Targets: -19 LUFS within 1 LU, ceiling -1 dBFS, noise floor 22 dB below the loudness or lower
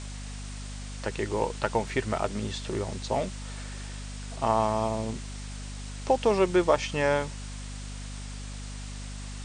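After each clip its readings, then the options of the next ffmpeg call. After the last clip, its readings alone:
hum 50 Hz; highest harmonic 250 Hz; hum level -36 dBFS; noise floor -38 dBFS; noise floor target -53 dBFS; loudness -30.5 LUFS; peak level -8.0 dBFS; loudness target -19.0 LUFS
-> -af "bandreject=f=50:t=h:w=6,bandreject=f=100:t=h:w=6,bandreject=f=150:t=h:w=6,bandreject=f=200:t=h:w=6,bandreject=f=250:t=h:w=6"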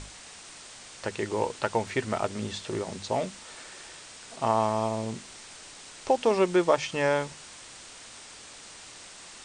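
hum not found; noise floor -47 dBFS; noise floor target -51 dBFS
-> -af "afftdn=nr=6:nf=-47"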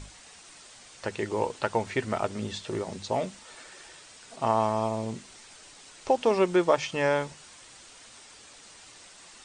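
noise floor -51 dBFS; loudness -28.5 LUFS; peak level -8.5 dBFS; loudness target -19.0 LUFS
-> -af "volume=2.99,alimiter=limit=0.891:level=0:latency=1"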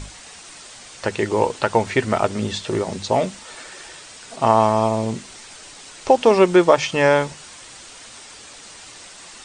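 loudness -19.0 LUFS; peak level -1.0 dBFS; noise floor -42 dBFS

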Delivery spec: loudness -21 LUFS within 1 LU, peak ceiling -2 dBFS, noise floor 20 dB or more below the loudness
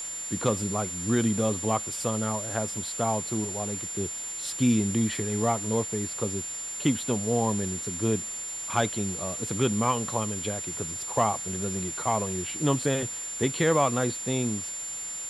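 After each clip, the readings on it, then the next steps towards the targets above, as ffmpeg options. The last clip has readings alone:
steady tone 7.2 kHz; tone level -33 dBFS; noise floor -36 dBFS; noise floor target -48 dBFS; loudness -27.5 LUFS; peak level -10.0 dBFS; loudness target -21.0 LUFS
-> -af "bandreject=f=7200:w=30"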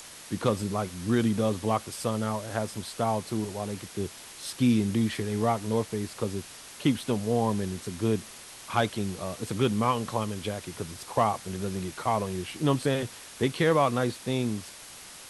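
steady tone not found; noise floor -46 dBFS; noise floor target -49 dBFS
-> -af "afftdn=nr=6:nf=-46"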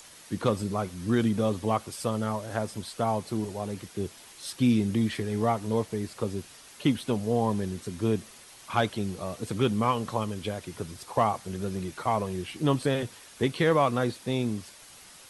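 noise floor -51 dBFS; loudness -29.0 LUFS; peak level -10.5 dBFS; loudness target -21.0 LUFS
-> -af "volume=2.51"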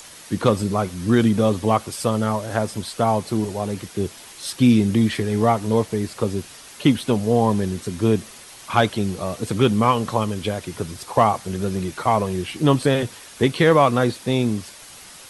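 loudness -21.0 LUFS; peak level -2.5 dBFS; noise floor -43 dBFS

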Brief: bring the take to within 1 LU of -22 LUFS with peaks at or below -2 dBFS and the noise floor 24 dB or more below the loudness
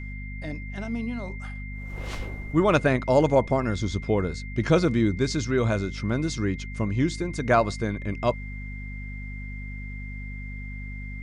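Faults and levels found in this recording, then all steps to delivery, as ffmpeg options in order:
hum 50 Hz; highest harmonic 250 Hz; hum level -33 dBFS; steady tone 2.1 kHz; tone level -41 dBFS; loudness -25.5 LUFS; peak level -6.5 dBFS; loudness target -22.0 LUFS
-> -af "bandreject=f=50:t=h:w=6,bandreject=f=100:t=h:w=6,bandreject=f=150:t=h:w=6,bandreject=f=200:t=h:w=6,bandreject=f=250:t=h:w=6"
-af "bandreject=f=2100:w=30"
-af "volume=1.5"

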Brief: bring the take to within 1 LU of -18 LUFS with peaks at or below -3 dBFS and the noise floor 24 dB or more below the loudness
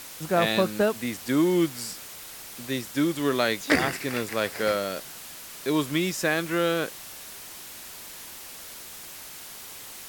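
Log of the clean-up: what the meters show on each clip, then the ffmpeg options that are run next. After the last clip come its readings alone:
noise floor -42 dBFS; noise floor target -50 dBFS; loudness -26.0 LUFS; peak level -8.5 dBFS; loudness target -18.0 LUFS
-> -af "afftdn=nr=8:nf=-42"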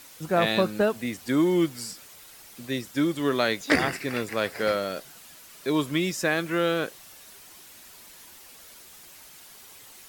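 noise floor -49 dBFS; noise floor target -50 dBFS
-> -af "afftdn=nr=6:nf=-49"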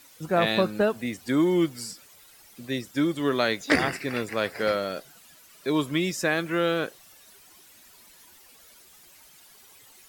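noise floor -54 dBFS; loudness -26.0 LUFS; peak level -8.5 dBFS; loudness target -18.0 LUFS
-> -af "volume=2.51,alimiter=limit=0.708:level=0:latency=1"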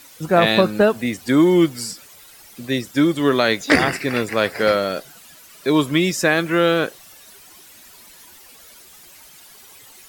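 loudness -18.5 LUFS; peak level -3.0 dBFS; noise floor -46 dBFS

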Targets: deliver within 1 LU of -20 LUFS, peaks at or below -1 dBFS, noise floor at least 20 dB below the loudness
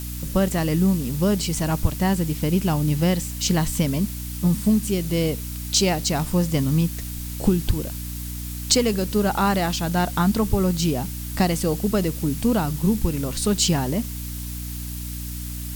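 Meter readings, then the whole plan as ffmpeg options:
hum 60 Hz; highest harmonic 300 Hz; hum level -30 dBFS; noise floor -31 dBFS; noise floor target -43 dBFS; loudness -23.0 LUFS; peak level -4.5 dBFS; loudness target -20.0 LUFS
-> -af "bandreject=f=60:t=h:w=4,bandreject=f=120:t=h:w=4,bandreject=f=180:t=h:w=4,bandreject=f=240:t=h:w=4,bandreject=f=300:t=h:w=4"
-af "afftdn=nr=12:nf=-31"
-af "volume=1.41"

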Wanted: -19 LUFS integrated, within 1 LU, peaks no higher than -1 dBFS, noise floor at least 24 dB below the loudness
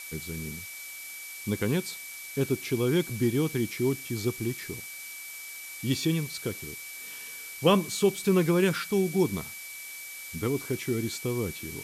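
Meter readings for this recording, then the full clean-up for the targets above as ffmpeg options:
steady tone 2.3 kHz; tone level -42 dBFS; noise floor -42 dBFS; noise floor target -54 dBFS; loudness -29.5 LUFS; peak level -9.5 dBFS; loudness target -19.0 LUFS
-> -af "bandreject=f=2300:w=30"
-af "afftdn=nr=12:nf=-42"
-af "volume=3.35,alimiter=limit=0.891:level=0:latency=1"

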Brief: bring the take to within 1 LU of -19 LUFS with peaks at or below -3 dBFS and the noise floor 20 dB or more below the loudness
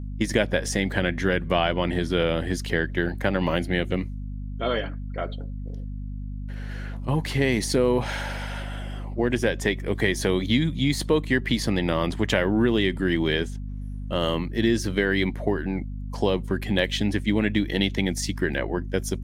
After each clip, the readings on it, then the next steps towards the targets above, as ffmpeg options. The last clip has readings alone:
hum 50 Hz; highest harmonic 250 Hz; hum level -30 dBFS; loudness -25.0 LUFS; peak level -5.5 dBFS; loudness target -19.0 LUFS
-> -af "bandreject=f=50:t=h:w=6,bandreject=f=100:t=h:w=6,bandreject=f=150:t=h:w=6,bandreject=f=200:t=h:w=6,bandreject=f=250:t=h:w=6"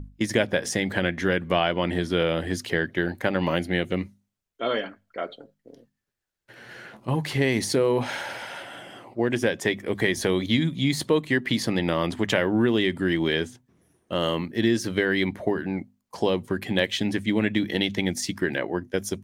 hum not found; loudness -25.5 LUFS; peak level -6.0 dBFS; loudness target -19.0 LUFS
-> -af "volume=2.11,alimiter=limit=0.708:level=0:latency=1"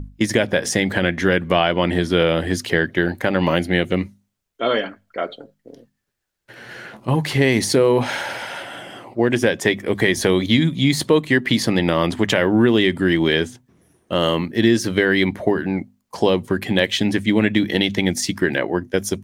loudness -19.0 LUFS; peak level -3.0 dBFS; noise floor -72 dBFS

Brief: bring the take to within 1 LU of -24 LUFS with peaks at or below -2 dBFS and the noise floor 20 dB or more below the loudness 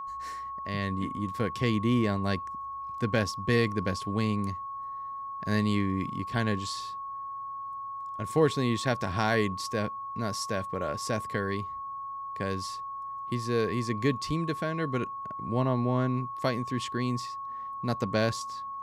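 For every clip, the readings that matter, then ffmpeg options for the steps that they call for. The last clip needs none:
steady tone 1.1 kHz; tone level -35 dBFS; loudness -30.5 LUFS; peak level -13.5 dBFS; loudness target -24.0 LUFS
-> -af "bandreject=f=1100:w=30"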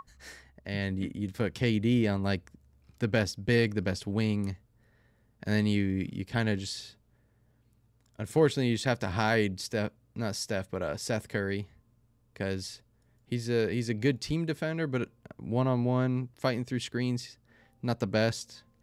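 steady tone not found; loudness -30.5 LUFS; peak level -13.5 dBFS; loudness target -24.0 LUFS
-> -af "volume=2.11"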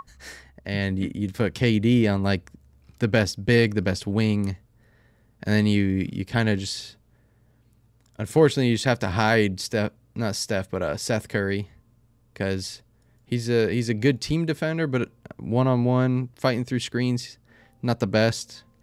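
loudness -24.0 LUFS; peak level -7.0 dBFS; noise floor -61 dBFS

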